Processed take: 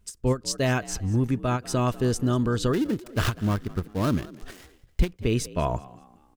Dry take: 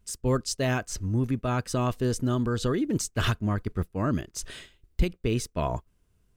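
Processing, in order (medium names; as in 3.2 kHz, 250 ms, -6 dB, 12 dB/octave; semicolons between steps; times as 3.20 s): 2.73–5.14 s: dead-time distortion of 0.16 ms; frequency-shifting echo 195 ms, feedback 39%, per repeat +55 Hz, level -20 dB; endings held to a fixed fall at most 330 dB/s; trim +2.5 dB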